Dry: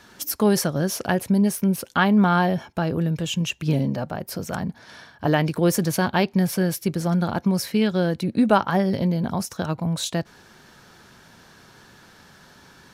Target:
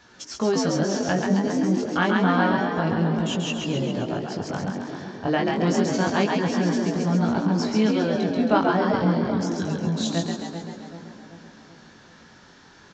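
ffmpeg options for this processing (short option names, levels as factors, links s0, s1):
-filter_complex "[0:a]asettb=1/sr,asplit=3[s0][s1][s2];[s0]atrim=end=9.324[s3];[s1]atrim=start=9.32:end=9.85,asetpts=PTS-STARTPTS,afade=t=in:d=0.004:c=qsin,afade=t=out:st=0.526:d=0.004:c=qsin,asuperstop=centerf=840:order=20:qfactor=0.93[s4];[s2]atrim=start=9.846[s5];[s3][s4]acrossfade=d=0.004:c1=hsin:c2=qsin[s6];[s6][s5]acrossfade=d=0.004:c1=qsin:c2=hsin,asplit=2[s7][s8];[s8]asplit=8[s9][s10][s11][s12][s13][s14][s15][s16];[s9]adelay=135,afreqshift=55,volume=0.668[s17];[s10]adelay=270,afreqshift=110,volume=0.38[s18];[s11]adelay=405,afreqshift=165,volume=0.216[s19];[s12]adelay=540,afreqshift=220,volume=0.124[s20];[s13]adelay=675,afreqshift=275,volume=0.0708[s21];[s14]adelay=810,afreqshift=330,volume=0.0403[s22];[s15]adelay=945,afreqshift=385,volume=0.0229[s23];[s16]adelay=1080,afreqshift=440,volume=0.013[s24];[s17][s18][s19][s20][s21][s22][s23][s24]amix=inputs=8:normalize=0[s25];[s7][s25]amix=inputs=2:normalize=0,flanger=delay=16.5:depth=6:speed=0.28,asplit=2[s26][s27];[s27]adelay=385,lowpass=f=2000:p=1,volume=0.316,asplit=2[s28][s29];[s29]adelay=385,lowpass=f=2000:p=1,volume=0.55,asplit=2[s30][s31];[s31]adelay=385,lowpass=f=2000:p=1,volume=0.55,asplit=2[s32][s33];[s33]adelay=385,lowpass=f=2000:p=1,volume=0.55,asplit=2[s34][s35];[s35]adelay=385,lowpass=f=2000:p=1,volume=0.55,asplit=2[s36][s37];[s37]adelay=385,lowpass=f=2000:p=1,volume=0.55[s38];[s28][s30][s32][s34][s36][s38]amix=inputs=6:normalize=0[s39];[s26][s39]amix=inputs=2:normalize=0,aresample=16000,aresample=44100"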